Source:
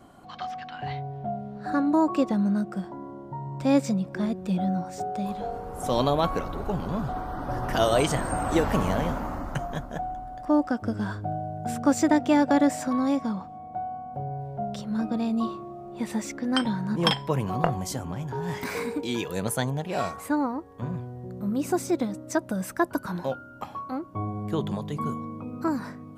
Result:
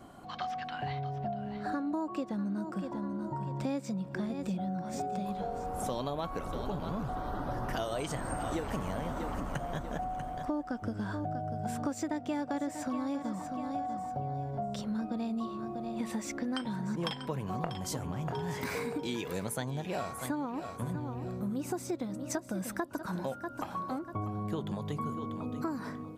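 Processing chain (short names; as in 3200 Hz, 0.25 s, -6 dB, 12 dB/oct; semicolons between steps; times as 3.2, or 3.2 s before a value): feedback echo 0.641 s, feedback 32%, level -13 dB; compressor 6:1, threshold -32 dBFS, peak gain reduction 15.5 dB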